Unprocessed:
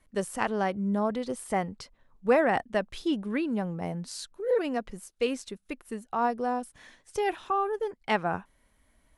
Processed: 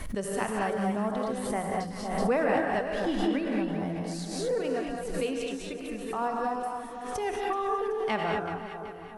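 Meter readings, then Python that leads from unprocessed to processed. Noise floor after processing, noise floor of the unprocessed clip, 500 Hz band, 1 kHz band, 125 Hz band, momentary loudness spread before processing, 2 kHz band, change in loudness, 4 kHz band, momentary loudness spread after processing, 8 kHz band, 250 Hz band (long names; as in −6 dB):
−40 dBFS, −68 dBFS, −0.5 dB, −0.5 dB, +1.0 dB, 12 LU, −0.5 dB, −0.5 dB, +0.5 dB, 8 LU, +1.5 dB, +0.5 dB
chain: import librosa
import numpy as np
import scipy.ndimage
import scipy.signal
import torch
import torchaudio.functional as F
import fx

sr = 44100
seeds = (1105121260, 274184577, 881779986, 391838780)

y = fx.low_shelf(x, sr, hz=170.0, db=5.5)
y = fx.hum_notches(y, sr, base_hz=60, count=7)
y = fx.echo_split(y, sr, split_hz=1100.0, low_ms=506, high_ms=378, feedback_pct=52, wet_db=-11.0)
y = fx.rev_gated(y, sr, seeds[0], gate_ms=250, shape='rising', drr_db=-0.5)
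y = fx.pre_swell(y, sr, db_per_s=44.0)
y = y * librosa.db_to_amplitude(-5.0)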